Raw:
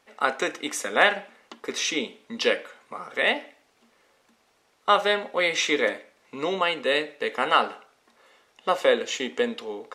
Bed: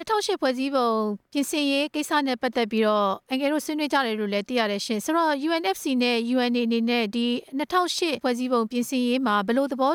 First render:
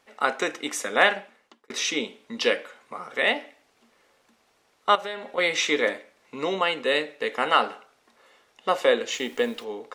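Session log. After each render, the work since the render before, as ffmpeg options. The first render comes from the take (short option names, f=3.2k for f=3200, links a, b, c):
-filter_complex "[0:a]asettb=1/sr,asplit=3[a][b][c];[a]atrim=end=4.954[d];[b]atrim=start=4.95:end=5.38,asetpts=PTS-STARTPTS,afade=t=in:d=0.004:c=qsin,afade=t=out:st=0.426:d=0.004:c=qsin,acompressor=threshold=-34dB:ratio=2.5:attack=3.2:release=140:knee=1:detection=peak[e];[c]atrim=start=5.376[f];[d][e]acrossfade=d=0.004:c1=hsin:c2=qsin[g];[g][f]acrossfade=d=0.004:c1=qsin:c2=hsin,asplit=3[h][i][j];[h]afade=t=out:st=9.1:d=0.02[k];[i]acrusher=bits=9:dc=4:mix=0:aa=0.000001,afade=t=in:st=9.1:d=0.02,afade=t=out:st=9.63:d=0.02[l];[j]afade=t=in:st=9.63:d=0.02[m];[k][l][m]amix=inputs=3:normalize=0,asplit=2[n][o];[n]atrim=end=1.7,asetpts=PTS-STARTPTS,afade=t=out:st=1.1:d=0.6[p];[o]atrim=start=1.7,asetpts=PTS-STARTPTS,afade=t=in:d=0.004:c=hsin[q];[p][q]concat=n=2:v=0:a=1"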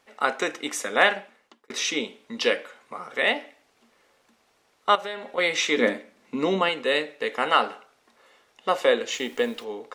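-filter_complex "[0:a]asettb=1/sr,asplit=3[a][b][c];[a]atrim=end=5.774[d];[b]atrim=start=5.77:end=6.69,asetpts=PTS-STARTPTS,afade=t=in:d=0.004:c=qsin,afade=t=out:st=0.916:d=0.004:c=qsin,equalizer=f=230:w=1.5:g=12.5[e];[c]atrim=start=6.686[f];[d][e]acrossfade=d=0.004:c1=hsin:c2=qsin[g];[g][f]acrossfade=d=0.004:c1=qsin:c2=hsin"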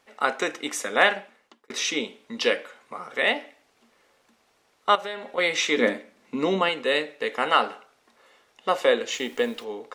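-af anull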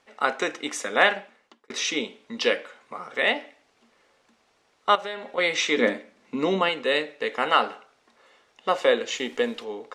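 -af "lowpass=8.3k"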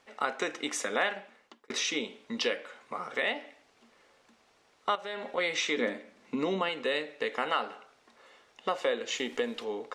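-af "acompressor=threshold=-30dB:ratio=2.5"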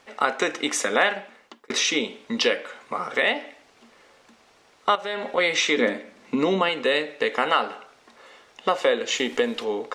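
-af "volume=8.5dB"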